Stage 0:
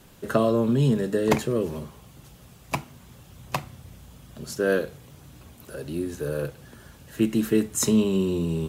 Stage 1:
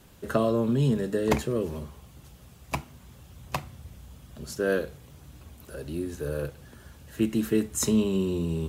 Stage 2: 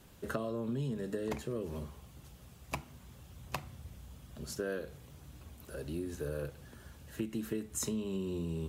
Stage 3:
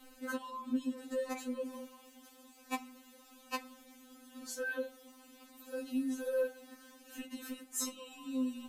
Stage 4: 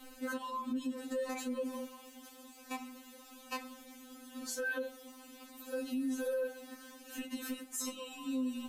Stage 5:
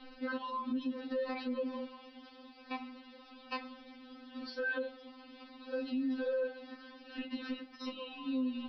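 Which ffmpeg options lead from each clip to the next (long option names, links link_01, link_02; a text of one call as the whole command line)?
ffmpeg -i in.wav -af "equalizer=frequency=69:width_type=o:width=0.35:gain=12.5,volume=-3dB" out.wav
ffmpeg -i in.wav -af "acompressor=threshold=-29dB:ratio=6,volume=-4dB" out.wav
ffmpeg -i in.wav -af "afftfilt=real='re*3.46*eq(mod(b,12),0)':imag='im*3.46*eq(mod(b,12),0)':win_size=2048:overlap=0.75,volume=4dB" out.wav
ffmpeg -i in.wav -af "alimiter=level_in=10dB:limit=-24dB:level=0:latency=1:release=67,volume=-10dB,volume=4.5dB" out.wav
ffmpeg -i in.wav -af "aresample=11025,aresample=44100,volume=1dB" out.wav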